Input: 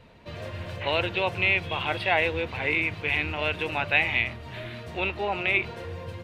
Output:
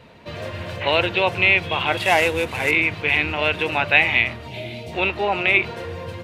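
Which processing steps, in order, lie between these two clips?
1.97–2.71 CVSD 64 kbps; HPF 110 Hz 6 dB/oct; 4.48–4.93 spectral gain 940–2000 Hz -15 dB; gain +7 dB

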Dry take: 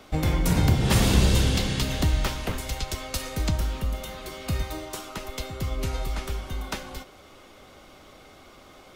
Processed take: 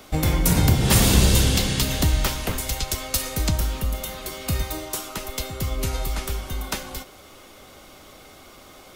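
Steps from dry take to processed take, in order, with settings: high shelf 7200 Hz +11.5 dB; gain +2.5 dB

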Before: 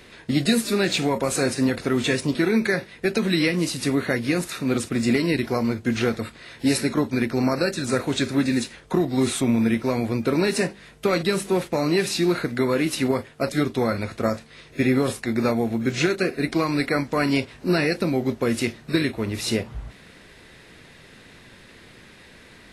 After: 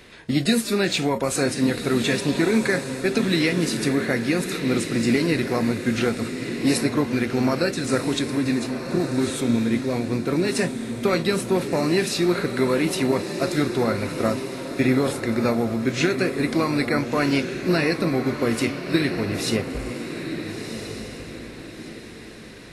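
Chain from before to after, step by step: 8.19–10.55 rotary speaker horn 5.5 Hz; diffused feedback echo 1.377 s, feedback 40%, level -7.5 dB

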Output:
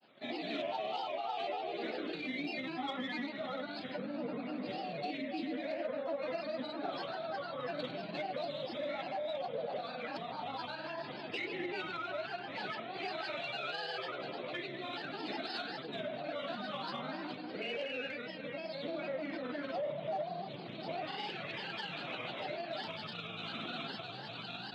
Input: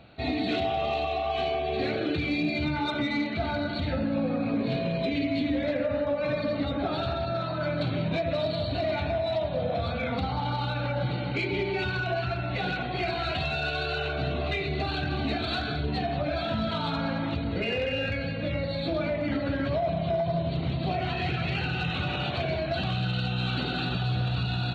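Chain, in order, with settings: Bessel high-pass 290 Hz, order 8; grains, grains 20/s, spray 34 ms, pitch spread up and down by 3 st; gain -7.5 dB

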